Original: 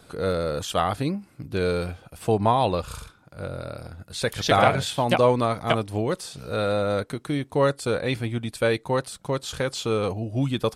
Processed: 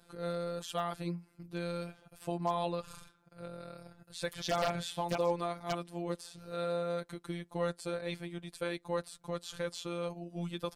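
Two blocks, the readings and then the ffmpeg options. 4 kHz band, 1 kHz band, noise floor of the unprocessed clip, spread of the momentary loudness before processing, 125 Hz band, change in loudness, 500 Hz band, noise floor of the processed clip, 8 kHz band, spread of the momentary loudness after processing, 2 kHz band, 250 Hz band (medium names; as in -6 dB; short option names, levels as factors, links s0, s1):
-12.0 dB, -13.0 dB, -56 dBFS, 14 LU, -14.5 dB, -12.5 dB, -12.0 dB, -68 dBFS, -11.5 dB, 13 LU, -14.0 dB, -12.0 dB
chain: -af "afftfilt=real='hypot(re,im)*cos(PI*b)':imag='0':win_size=1024:overlap=0.75,aeval=exprs='0.282*(abs(mod(val(0)/0.282+3,4)-2)-1)':c=same,volume=0.376"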